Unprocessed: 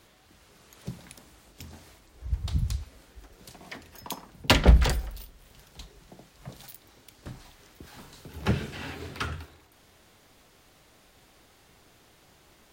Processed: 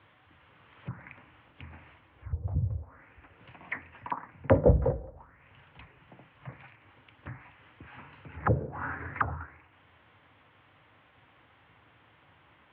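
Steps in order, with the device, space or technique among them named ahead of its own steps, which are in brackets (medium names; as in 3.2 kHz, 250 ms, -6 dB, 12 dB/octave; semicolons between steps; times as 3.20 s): envelope filter bass rig (touch-sensitive low-pass 520–3500 Hz down, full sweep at -26.5 dBFS; cabinet simulation 79–2100 Hz, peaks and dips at 99 Hz +4 dB, 200 Hz -9 dB, 390 Hz -10 dB, 670 Hz -5 dB, 1 kHz +3 dB)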